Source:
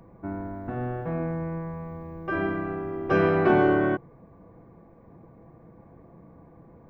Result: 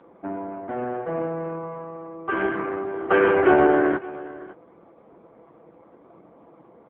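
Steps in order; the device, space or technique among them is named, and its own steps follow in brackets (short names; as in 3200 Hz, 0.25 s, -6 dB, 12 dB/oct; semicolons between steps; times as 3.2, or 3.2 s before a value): 2.09–3.51 dynamic EQ 2800 Hz, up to +3 dB, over -47 dBFS, Q 1.8; satellite phone (BPF 330–3400 Hz; echo 0.562 s -19 dB; gain +7 dB; AMR-NB 5.15 kbps 8000 Hz)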